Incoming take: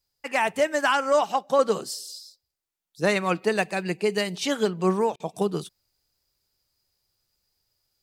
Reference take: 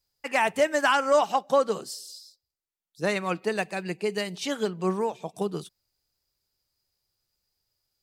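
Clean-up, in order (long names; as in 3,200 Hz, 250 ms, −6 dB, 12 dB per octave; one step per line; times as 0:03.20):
repair the gap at 0:05.16, 38 ms
level 0 dB, from 0:01.59 −4 dB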